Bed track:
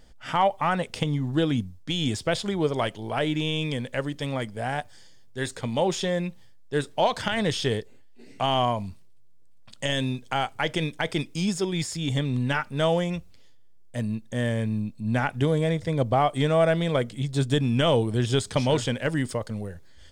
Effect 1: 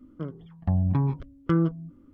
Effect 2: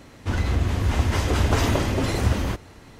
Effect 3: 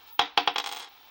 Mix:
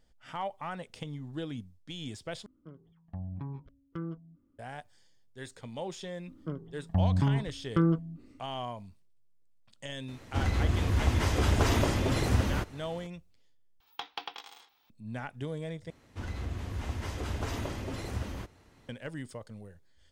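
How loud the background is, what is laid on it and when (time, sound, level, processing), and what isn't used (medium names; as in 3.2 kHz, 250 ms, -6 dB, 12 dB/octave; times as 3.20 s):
bed track -14 dB
2.46 s: replace with 1 -15.5 dB
6.27 s: add 1 -2.5 dB
10.08 s: add 2 -5 dB
13.80 s: replace with 3 -16 dB + peaking EQ 210 Hz +4.5 dB 0.44 oct
15.90 s: replace with 2 -14 dB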